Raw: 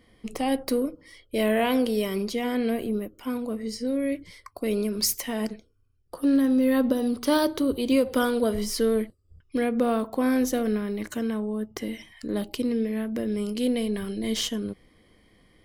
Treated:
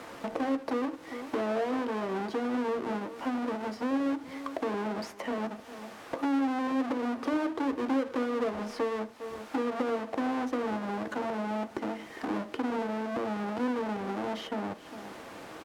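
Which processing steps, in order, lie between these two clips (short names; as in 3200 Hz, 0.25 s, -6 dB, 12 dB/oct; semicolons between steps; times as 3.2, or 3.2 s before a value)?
half-waves squared off; outdoor echo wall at 69 m, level -24 dB; in parallel at -6 dB: requantised 6-bit, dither triangular; on the sum: compressor 3:1, threshold -31 dBFS, peak gain reduction 14.5 dB; band-pass 670 Hz, Q 0.68; on a send at -9 dB: reverb RT60 0.25 s, pre-delay 3 ms; on the sum: three-band squash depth 40%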